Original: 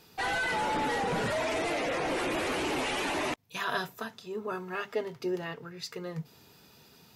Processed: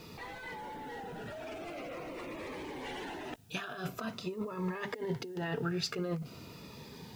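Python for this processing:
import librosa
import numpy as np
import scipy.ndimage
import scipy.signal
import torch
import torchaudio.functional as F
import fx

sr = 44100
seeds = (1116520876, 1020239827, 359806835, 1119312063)

y = fx.lowpass(x, sr, hz=2300.0, slope=6)
y = fx.over_compress(y, sr, threshold_db=-42.0, ratio=-1.0)
y = fx.quant_dither(y, sr, seeds[0], bits=12, dither='triangular')
y = fx.notch_cascade(y, sr, direction='falling', hz=0.46)
y = y * 10.0 ** (3.5 / 20.0)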